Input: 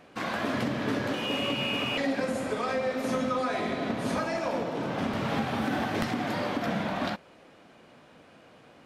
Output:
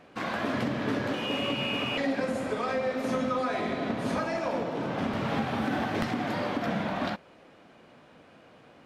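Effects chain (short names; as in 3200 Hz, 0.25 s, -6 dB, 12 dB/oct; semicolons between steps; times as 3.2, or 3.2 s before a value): high shelf 5500 Hz -6 dB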